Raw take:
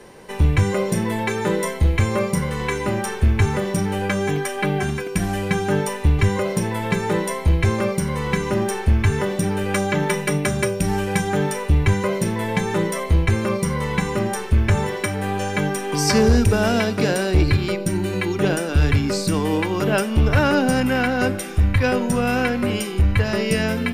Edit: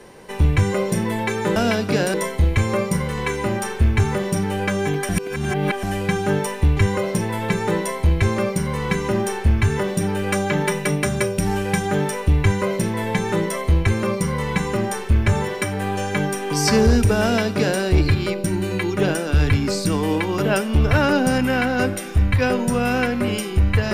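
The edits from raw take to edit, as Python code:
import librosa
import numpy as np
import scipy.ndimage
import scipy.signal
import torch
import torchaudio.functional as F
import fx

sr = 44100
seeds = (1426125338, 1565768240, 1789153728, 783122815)

y = fx.edit(x, sr, fx.reverse_span(start_s=4.51, length_s=0.74),
    fx.duplicate(start_s=16.65, length_s=0.58, to_s=1.56), tone=tone)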